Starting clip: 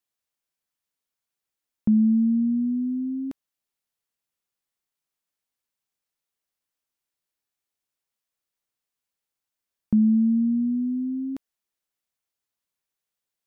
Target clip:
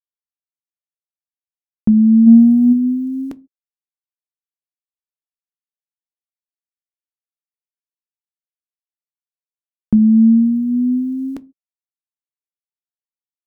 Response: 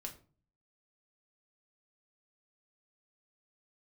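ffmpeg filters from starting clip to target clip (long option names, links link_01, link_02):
-filter_complex "[0:a]aeval=exprs='val(0)*gte(abs(val(0)),0.00224)':channel_layout=same,asplit=3[link_01][link_02][link_03];[link_01]afade=type=out:start_time=2.26:duration=0.02[link_04];[link_02]acontrast=76,afade=type=in:start_time=2.26:duration=0.02,afade=type=out:start_time=2.72:duration=0.02[link_05];[link_03]afade=type=in:start_time=2.72:duration=0.02[link_06];[link_04][link_05][link_06]amix=inputs=3:normalize=0,asplit=2[link_07][link_08];[1:a]atrim=start_sample=2205,afade=type=out:start_time=0.34:duration=0.01,atrim=end_sample=15435,asetrate=79380,aresample=44100[link_09];[link_08][link_09]afir=irnorm=-1:irlink=0,volume=-2dB[link_10];[link_07][link_10]amix=inputs=2:normalize=0,volume=6.5dB"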